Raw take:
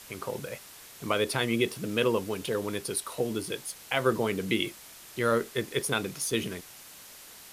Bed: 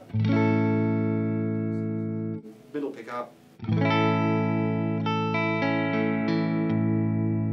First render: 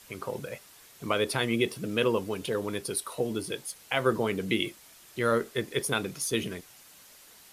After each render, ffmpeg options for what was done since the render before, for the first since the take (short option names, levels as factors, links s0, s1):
-af "afftdn=nr=6:nf=-49"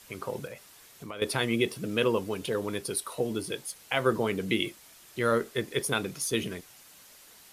-filter_complex "[0:a]asettb=1/sr,asplit=3[s0][s1][s2];[s0]atrim=end=0.474[s3];[s1]atrim=start=0.47:end=1.22,asetpts=PTS-STARTPTS,afade=t=in:d=0.004:c=qsin,afade=t=out:st=0.746:d=0.004:c=qsin,acompressor=threshold=0.0112:ratio=3:attack=3.2:release=140:knee=1:detection=peak[s4];[s2]atrim=start=1.216[s5];[s3][s4]acrossfade=d=0.004:c1=hsin:c2=qsin[s6];[s6][s5]acrossfade=d=0.004:c1=qsin:c2=hsin"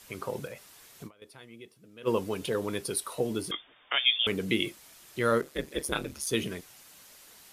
-filter_complex "[0:a]asettb=1/sr,asplit=3[s0][s1][s2];[s0]atrim=end=3.514[s3];[s1]atrim=start=3.51:end=4.27,asetpts=PTS-STARTPTS,afade=t=in:d=0.004:c=qsin,afade=t=out:st=0.756:d=0.004:c=qsin,lowpass=f=3100:t=q:w=0.5098,lowpass=f=3100:t=q:w=0.6013,lowpass=f=3100:t=q:w=0.9,lowpass=f=3100:t=q:w=2.563,afreqshift=-3700[s4];[s2]atrim=start=4.266[s5];[s3][s4]acrossfade=d=0.004:c1=hsin:c2=qsin[s6];[s6][s5]acrossfade=d=0.004:c1=qsin:c2=hsin,asplit=3[s7][s8][s9];[s7]afade=t=out:st=5.41:d=0.02[s10];[s8]aeval=exprs='val(0)*sin(2*PI*71*n/s)':c=same,afade=t=in:st=5.41:d=0.02,afade=t=out:st=6.25:d=0.02[s11];[s9]afade=t=in:st=6.25:d=0.02[s12];[s10][s11][s12]amix=inputs=3:normalize=0,asplit=3[s13][s14][s15];[s13]atrim=end=1.23,asetpts=PTS-STARTPTS,afade=t=out:st=1.07:d=0.16:c=exp:silence=0.0794328[s16];[s14]atrim=start=1.23:end=1.92,asetpts=PTS-STARTPTS,volume=0.0794[s17];[s15]atrim=start=1.92,asetpts=PTS-STARTPTS,afade=t=in:d=0.16:c=exp:silence=0.0794328[s18];[s16][s17][s18]concat=n=3:v=0:a=1"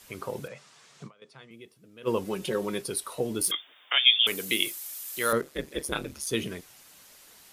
-filter_complex "[0:a]asettb=1/sr,asplit=3[s0][s1][s2];[s0]atrim=end=0.484[s3];[s1]atrim=start=0.48:end=1.51,asetpts=PTS-STARTPTS,afade=t=in:d=0.004:c=qsin,afade=t=out:st=1.026:d=0.004:c=qsin,highpass=f=140:w=0.5412,highpass=f=140:w=1.3066,equalizer=f=140:t=q:w=4:g=9,equalizer=f=310:t=q:w=4:g=-7,equalizer=f=1200:t=q:w=4:g=4,lowpass=f=7700:w=0.5412,lowpass=f=7700:w=1.3066[s4];[s2]atrim=start=1.506[s5];[s3][s4]acrossfade=d=0.004:c1=hsin:c2=qsin[s6];[s6][s5]acrossfade=d=0.004:c1=qsin:c2=hsin,asettb=1/sr,asplit=3[s7][s8][s9];[s7]atrim=end=2.244[s10];[s8]atrim=start=2.24:end=2.82,asetpts=PTS-STARTPTS,afade=t=in:d=0.004:c=qsin,afade=t=out:st=0.576:d=0.004:c=qsin,aecho=1:1:5.4:0.65,atrim=end_sample=25578[s11];[s9]atrim=start=2.816[s12];[s10][s11]acrossfade=d=0.004:c1=hsin:c2=qsin[s13];[s13][s12]acrossfade=d=0.004:c1=qsin:c2=hsin,asettb=1/sr,asplit=3[s14][s15][s16];[s14]atrim=end=3.414[s17];[s15]atrim=start=3.41:end=5.33,asetpts=PTS-STARTPTS,afade=t=in:d=0.004:c=qsin,afade=t=out:st=1.916:d=0.004:c=qsin,aemphasis=mode=production:type=riaa[s18];[s16]atrim=start=5.326[s19];[s17][s18]acrossfade=d=0.004:c1=hsin:c2=qsin[s20];[s20][s19]acrossfade=d=0.004:c1=qsin:c2=hsin"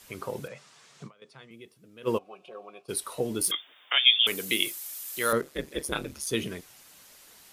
-filter_complex "[0:a]asplit=3[s0][s1][s2];[s0]afade=t=out:st=2.17:d=0.02[s3];[s1]asplit=3[s4][s5][s6];[s4]bandpass=f=730:t=q:w=8,volume=1[s7];[s5]bandpass=f=1090:t=q:w=8,volume=0.501[s8];[s6]bandpass=f=2440:t=q:w=8,volume=0.355[s9];[s7][s8][s9]amix=inputs=3:normalize=0,afade=t=in:st=2.17:d=0.02,afade=t=out:st=2.88:d=0.02[s10];[s2]afade=t=in:st=2.88:d=0.02[s11];[s3][s10][s11]amix=inputs=3:normalize=0"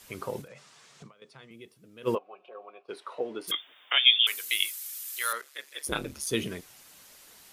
-filter_complex "[0:a]asettb=1/sr,asplit=3[s0][s1][s2];[s0]atrim=end=0.414[s3];[s1]atrim=start=0.41:end=1.55,asetpts=PTS-STARTPTS,afade=t=in:d=0.004:c=qsin,afade=t=out:st=1.136:d=0.004:c=qsin,acompressor=threshold=0.00708:ratio=12:attack=3.2:release=140:knee=1:detection=peak[s4];[s2]atrim=start=1.546[s5];[s3][s4]acrossfade=d=0.004:c1=hsin:c2=qsin[s6];[s6][s5]acrossfade=d=0.004:c1=qsin:c2=hsin,asplit=3[s7][s8][s9];[s7]afade=t=out:st=2.14:d=0.02[s10];[s8]highpass=420,lowpass=2300,afade=t=in:st=2.14:d=0.02,afade=t=out:st=3.47:d=0.02[s11];[s9]afade=t=in:st=3.47:d=0.02[s12];[s10][s11][s12]amix=inputs=3:normalize=0,asettb=1/sr,asplit=3[s13][s14][s15];[s13]atrim=end=4.184[s16];[s14]atrim=start=4.18:end=5.87,asetpts=PTS-STARTPTS,afade=t=in:d=0.004:c=qsin,afade=t=out:st=1.686:d=0.004:c=qsin,highpass=1300[s17];[s15]atrim=start=5.866[s18];[s16][s17]acrossfade=d=0.004:c1=hsin:c2=qsin[s19];[s19][s18]acrossfade=d=0.004:c1=qsin:c2=hsin"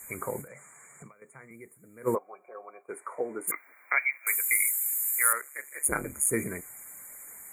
-af "afftfilt=real='re*(1-between(b*sr/4096,2400,6700))':imag='im*(1-between(b*sr/4096,2400,6700))':win_size=4096:overlap=0.75,highshelf=f=2300:g=10.5"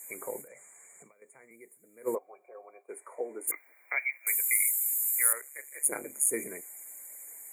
-af "highpass=400,equalizer=f=1300:w=1.4:g=-12.5"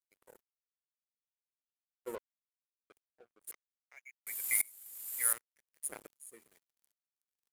-af "aeval=exprs='sgn(val(0))*max(abs(val(0))-0.0141,0)':c=same,aeval=exprs='val(0)*pow(10,-28*if(lt(mod(-1.3*n/s,1),2*abs(-1.3)/1000),1-mod(-1.3*n/s,1)/(2*abs(-1.3)/1000),(mod(-1.3*n/s,1)-2*abs(-1.3)/1000)/(1-2*abs(-1.3)/1000))/20)':c=same"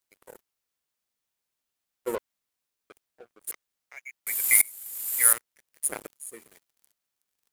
-af "volume=3.76,alimiter=limit=0.708:level=0:latency=1"